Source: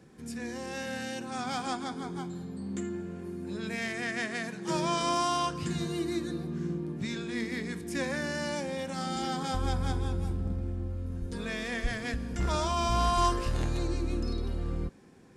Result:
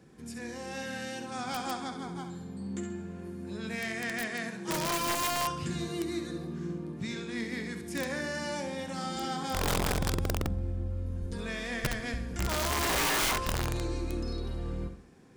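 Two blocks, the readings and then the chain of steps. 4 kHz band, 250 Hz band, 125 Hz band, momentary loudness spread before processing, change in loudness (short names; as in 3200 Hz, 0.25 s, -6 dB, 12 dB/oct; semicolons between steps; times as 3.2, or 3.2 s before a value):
+1.5 dB, -2.0 dB, -1.5 dB, 9 LU, -0.5 dB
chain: flutter echo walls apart 11.5 m, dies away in 0.48 s; wrapped overs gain 21.5 dB; gain -1.5 dB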